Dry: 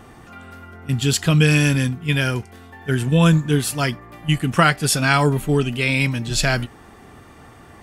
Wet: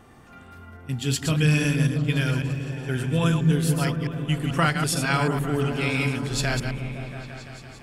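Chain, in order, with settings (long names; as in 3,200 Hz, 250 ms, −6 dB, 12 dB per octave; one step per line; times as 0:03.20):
delay that plays each chunk backwards 110 ms, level −6 dB
echo whose low-pass opens from repeat to repeat 170 ms, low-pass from 200 Hz, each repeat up 1 octave, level −3 dB
level −7.5 dB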